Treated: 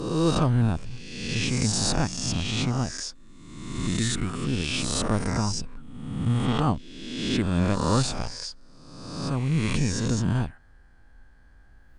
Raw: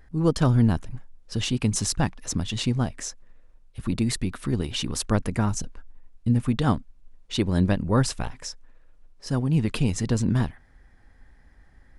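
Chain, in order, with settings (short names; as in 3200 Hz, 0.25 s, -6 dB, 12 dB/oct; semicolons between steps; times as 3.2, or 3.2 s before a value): spectral swells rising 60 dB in 1.27 s; formant shift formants -2 st; gain -3.5 dB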